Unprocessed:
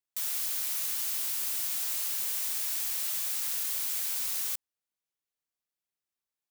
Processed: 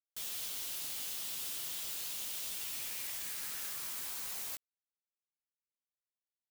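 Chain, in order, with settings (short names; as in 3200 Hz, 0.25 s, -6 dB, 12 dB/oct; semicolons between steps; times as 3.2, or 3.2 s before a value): chorus voices 6, 0.57 Hz, delay 14 ms, depth 1.3 ms; high-pass sweep 3100 Hz -> 220 Hz, 2.51–6.14; requantised 6-bit, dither none; gain -6.5 dB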